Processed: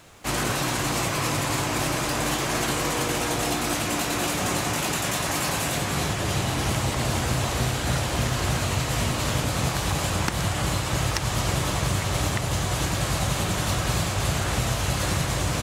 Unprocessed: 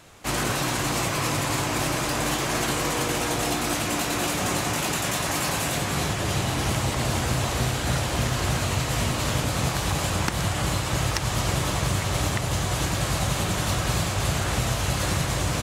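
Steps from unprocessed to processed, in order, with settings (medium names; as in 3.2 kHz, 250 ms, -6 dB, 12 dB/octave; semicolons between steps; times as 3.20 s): bit crusher 11-bit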